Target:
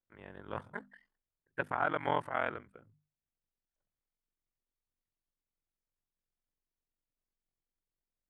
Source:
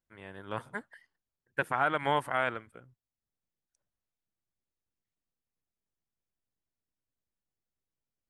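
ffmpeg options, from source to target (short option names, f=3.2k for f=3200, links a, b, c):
-af "aemphasis=mode=reproduction:type=75kf,aeval=exprs='val(0)*sin(2*PI*22*n/s)':c=same,bandreject=f=50:t=h:w=6,bandreject=f=100:t=h:w=6,bandreject=f=150:t=h:w=6,bandreject=f=200:t=h:w=6,bandreject=f=250:t=h:w=6"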